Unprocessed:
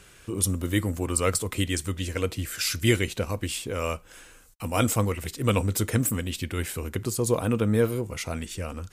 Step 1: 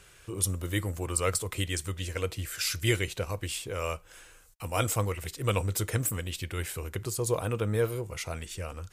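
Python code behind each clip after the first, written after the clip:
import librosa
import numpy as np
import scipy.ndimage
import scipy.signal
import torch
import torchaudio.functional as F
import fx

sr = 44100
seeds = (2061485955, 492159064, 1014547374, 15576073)

y = fx.peak_eq(x, sr, hz=240.0, db=-12.0, octaves=0.55)
y = y * librosa.db_to_amplitude(-3.0)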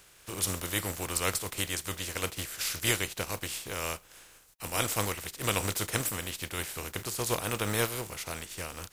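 y = fx.spec_flatten(x, sr, power=0.48)
y = y * librosa.db_to_amplitude(-2.0)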